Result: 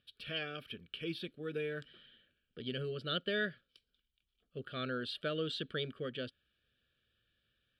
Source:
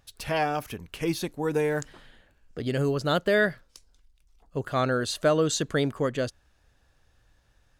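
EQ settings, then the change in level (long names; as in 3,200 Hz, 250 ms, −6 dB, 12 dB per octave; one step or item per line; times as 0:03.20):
formant filter i
parametric band 1,200 Hz +5.5 dB 0.65 octaves
phaser with its sweep stopped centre 1,400 Hz, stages 8
+9.5 dB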